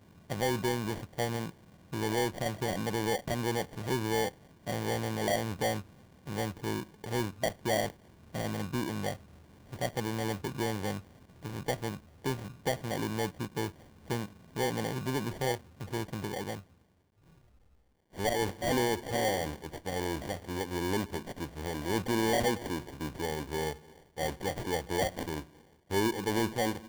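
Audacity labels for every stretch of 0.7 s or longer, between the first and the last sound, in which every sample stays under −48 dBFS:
16.610000	18.150000	silence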